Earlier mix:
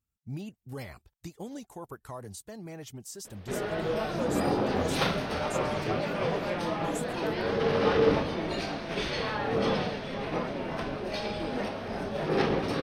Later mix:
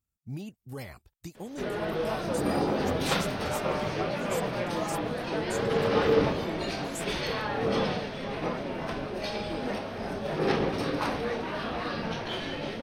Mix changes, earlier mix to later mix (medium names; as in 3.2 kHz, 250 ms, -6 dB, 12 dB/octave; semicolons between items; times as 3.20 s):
background: entry -1.90 s; master: add treble shelf 9.3 kHz +4.5 dB